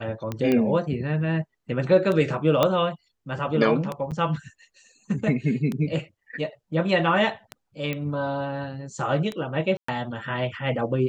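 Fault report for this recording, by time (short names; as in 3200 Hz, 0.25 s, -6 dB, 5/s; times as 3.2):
tick 33 1/3 rpm -16 dBFS
0.52 pop -12 dBFS
2.63 pop -7 dBFS
4.11–4.12 gap 7.6 ms
7.93 pop -16 dBFS
9.77–9.88 gap 0.114 s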